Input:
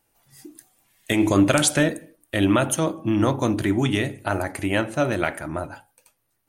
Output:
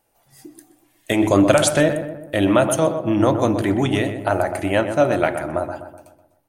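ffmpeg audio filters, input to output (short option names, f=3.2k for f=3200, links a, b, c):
-filter_complex "[0:a]equalizer=f=630:w=1.2:g=7.5,asplit=2[a][b];[b]adelay=125,lowpass=f=1.7k:p=1,volume=-8dB,asplit=2[c][d];[d]adelay=125,lowpass=f=1.7k:p=1,volume=0.51,asplit=2[e][f];[f]adelay=125,lowpass=f=1.7k:p=1,volume=0.51,asplit=2[g][h];[h]adelay=125,lowpass=f=1.7k:p=1,volume=0.51,asplit=2[i][j];[j]adelay=125,lowpass=f=1.7k:p=1,volume=0.51,asplit=2[k][l];[l]adelay=125,lowpass=f=1.7k:p=1,volume=0.51[m];[a][c][e][g][i][k][m]amix=inputs=7:normalize=0"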